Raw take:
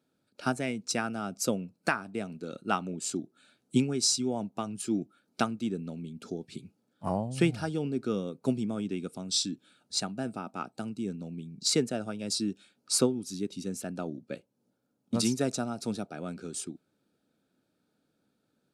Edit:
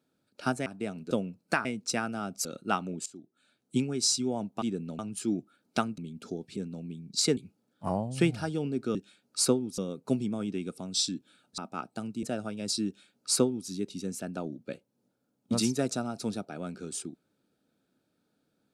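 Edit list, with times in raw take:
0:00.66–0:01.46: swap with 0:02.00–0:02.45
0:03.06–0:04.12: fade in, from −19.5 dB
0:05.61–0:05.98: move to 0:04.62
0:09.95–0:10.40: remove
0:11.05–0:11.85: move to 0:06.57
0:12.48–0:13.31: duplicate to 0:08.15

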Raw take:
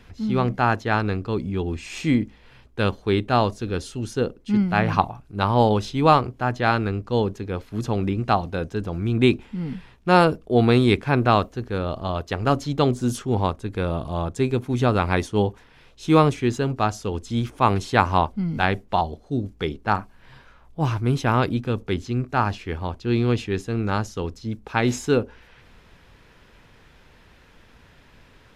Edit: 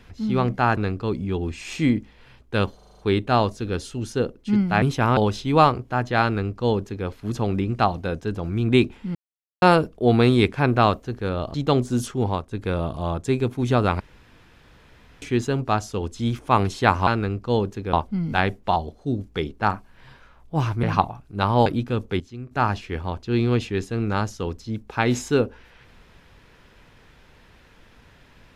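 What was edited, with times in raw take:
0:00.77–0:01.02: remove
0:03.00: stutter 0.04 s, 7 plays
0:04.83–0:05.66: swap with 0:21.08–0:21.43
0:06.70–0:07.56: duplicate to 0:18.18
0:09.64–0:10.11: silence
0:12.03–0:12.65: remove
0:13.28–0:13.62: fade out, to −7 dB
0:15.11–0:16.33: fill with room tone
0:21.97–0:22.28: clip gain −11 dB

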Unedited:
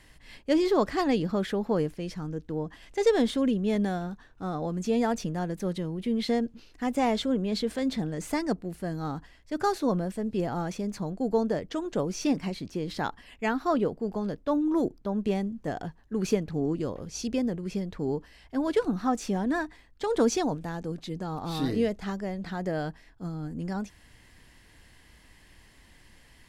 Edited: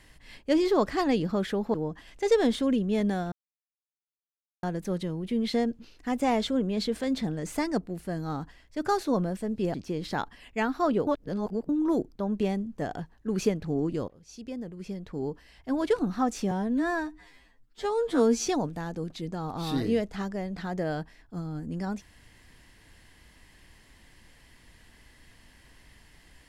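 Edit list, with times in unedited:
0:01.74–0:02.49: remove
0:04.07–0:05.38: silence
0:10.49–0:12.60: remove
0:13.93–0:14.55: reverse
0:16.94–0:18.64: fade in, from −19.5 dB
0:19.37–0:20.35: time-stretch 2×

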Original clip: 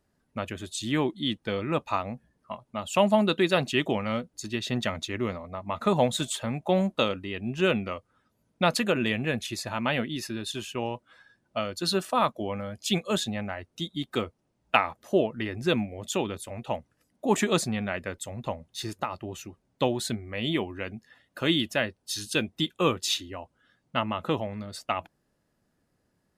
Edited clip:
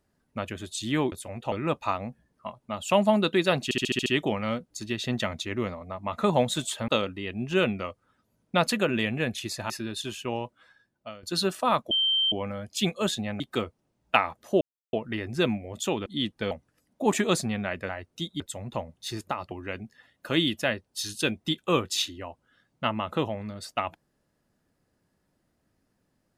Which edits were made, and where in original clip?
0:01.12–0:01.57: swap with 0:16.34–0:16.74
0:03.69: stutter 0.07 s, 7 plays
0:06.51–0:06.95: remove
0:09.77–0:10.20: remove
0:10.93–0:11.73: fade out, to −16.5 dB
0:12.41: insert tone 3,130 Hz −21 dBFS 0.41 s
0:13.49–0:14.00: move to 0:18.12
0:15.21: splice in silence 0.32 s
0:19.23–0:20.63: remove

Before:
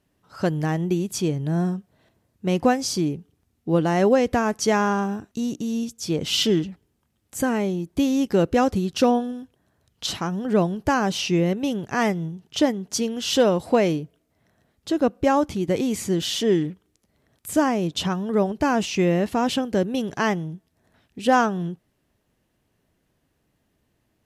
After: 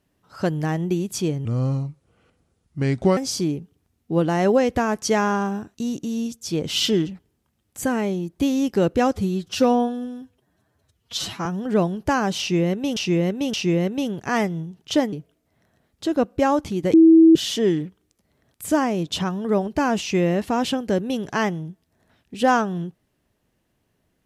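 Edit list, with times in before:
0:01.45–0:02.74: play speed 75%
0:08.70–0:10.25: time-stretch 1.5×
0:11.19–0:11.76: repeat, 3 plays
0:12.78–0:13.97: remove
0:15.78–0:16.20: beep over 325 Hz −7.5 dBFS

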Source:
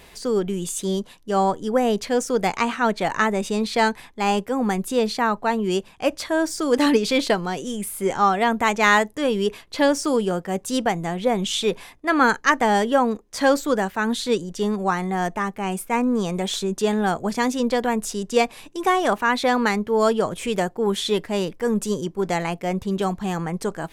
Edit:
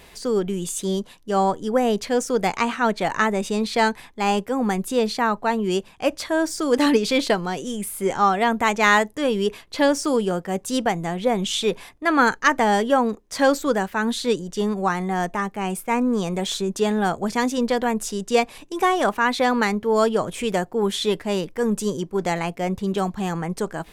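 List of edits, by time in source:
truncate silence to 0.24 s

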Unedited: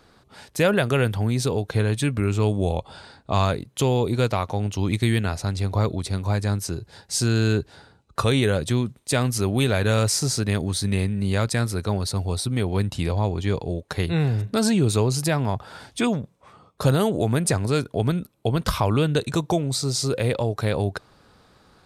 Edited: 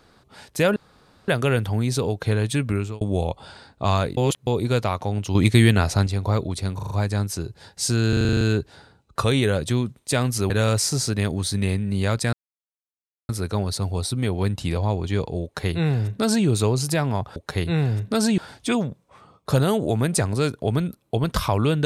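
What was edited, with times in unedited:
0:00.76: splice in room tone 0.52 s
0:02.21–0:02.49: fade out
0:03.65–0:03.95: reverse
0:04.83–0:05.55: clip gain +6 dB
0:06.23: stutter 0.04 s, 5 plays
0:07.41: stutter 0.04 s, 9 plays
0:09.50–0:09.80: remove
0:11.63: splice in silence 0.96 s
0:13.78–0:14.80: duplicate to 0:15.70

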